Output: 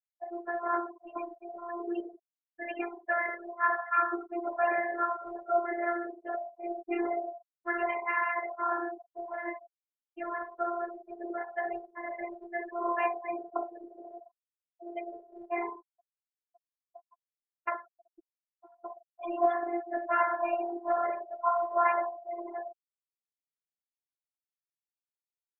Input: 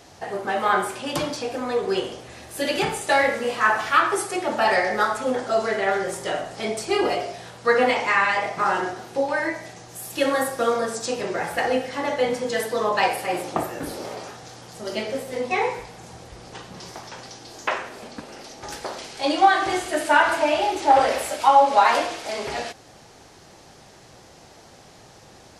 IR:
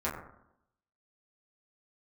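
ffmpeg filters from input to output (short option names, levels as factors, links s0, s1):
-filter_complex "[0:a]aeval=exprs='val(0)+0.00251*sin(2*PI*820*n/s)':c=same,acrossover=split=330 2500:gain=0.0708 1 0.158[s0][s1][s2];[s0][s1][s2]amix=inputs=3:normalize=0,asplit=2[s3][s4];[1:a]atrim=start_sample=2205,asetrate=35280,aresample=44100[s5];[s4][s5]afir=irnorm=-1:irlink=0,volume=0.0631[s6];[s3][s6]amix=inputs=2:normalize=0,afftfilt=real='re*gte(hypot(re,im),0.0794)':imag='im*gte(hypot(re,im),0.0794)':win_size=1024:overlap=0.75,afftfilt=real='hypot(re,im)*cos(PI*b)':imag='0':win_size=512:overlap=0.75,volume=0.596"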